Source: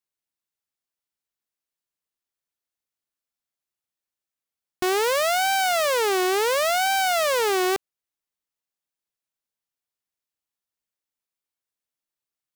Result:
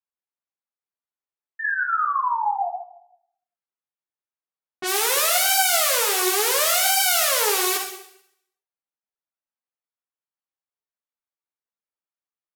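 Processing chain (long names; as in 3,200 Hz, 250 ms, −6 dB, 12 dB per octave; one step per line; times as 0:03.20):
RIAA equalisation recording
low-pass that shuts in the quiet parts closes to 1,300 Hz, open at −20 dBFS
sound drawn into the spectrogram fall, 0:01.59–0:02.69, 690–1,800 Hz −22 dBFS
on a send at −3.5 dB: convolution reverb RT60 0.75 s, pre-delay 48 ms
on the sum: string-ensemble chorus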